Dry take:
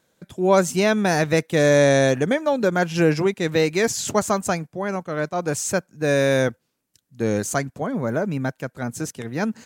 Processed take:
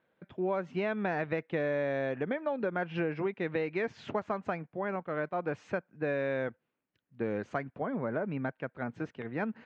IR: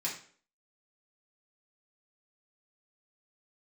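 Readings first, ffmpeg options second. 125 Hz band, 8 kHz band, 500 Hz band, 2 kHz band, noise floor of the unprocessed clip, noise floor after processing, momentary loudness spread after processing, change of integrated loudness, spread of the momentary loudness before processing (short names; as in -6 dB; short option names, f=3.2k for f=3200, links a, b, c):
-15.0 dB, under -40 dB, -12.5 dB, -11.5 dB, -74 dBFS, -83 dBFS, 6 LU, -13.0 dB, 10 LU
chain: -af "lowpass=f=2.7k:w=0.5412,lowpass=f=2.7k:w=1.3066,lowshelf=f=150:g=-9.5,acompressor=threshold=-23dB:ratio=6,volume=-5.5dB"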